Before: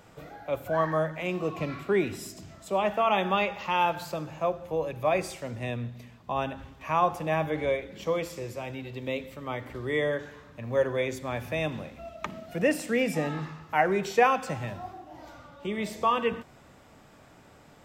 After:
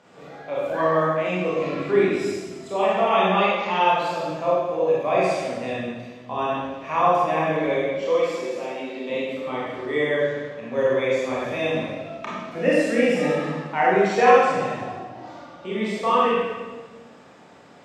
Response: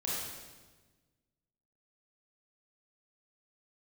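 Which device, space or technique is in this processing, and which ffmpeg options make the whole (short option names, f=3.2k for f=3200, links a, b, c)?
supermarket ceiling speaker: -filter_complex "[0:a]asettb=1/sr,asplit=3[a][b][c];[a]atrim=end=7.934[d];[b]atrim=start=7.93:end=9.1,asetpts=PTS-STARTPTS,afade=t=in:d=0.004:c=qsin,afade=t=out:st=1.166:d=0.004:c=qsin,highpass=f=210:w=0.5412,highpass=f=210:w=1.3066[e];[c]atrim=start=9.096[f];[d][e]acrossfade=d=0.004:c1=hsin:c2=qsin[g];[g][f]acrossfade=d=0.004:c1=qsin:c2=hsin,highpass=200,lowpass=6.1k[h];[1:a]atrim=start_sample=2205[i];[h][i]afir=irnorm=-1:irlink=0,volume=2dB"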